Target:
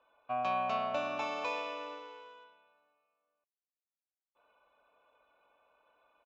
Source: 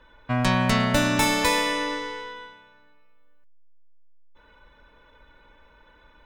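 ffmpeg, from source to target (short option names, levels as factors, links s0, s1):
-filter_complex "[0:a]asplit=3[s0][s1][s2];[s0]bandpass=f=730:t=q:w=8,volume=1[s3];[s1]bandpass=f=1090:t=q:w=8,volume=0.501[s4];[s2]bandpass=f=2440:t=q:w=8,volume=0.355[s5];[s3][s4][s5]amix=inputs=3:normalize=0,asettb=1/sr,asplit=3[s6][s7][s8];[s6]atrim=end=1.274[s9];[s7]atrim=start=1.27:end=2.44,asetpts=PTS-STARTPTS,afade=t=in:d=0.004:c=qsin,afade=t=out:st=1.166:d=0.004:c=qsin,acrusher=bits=6:mode=log:mix=0:aa=0.000001[s10];[s8]atrim=start=2.436[s11];[s9][s10]acrossfade=d=0.004:c1=hsin:c2=qsin[s12];[s12][s11]acrossfade=d=0.004:c1=qsin:c2=hsin,aresample=16000,aresample=44100"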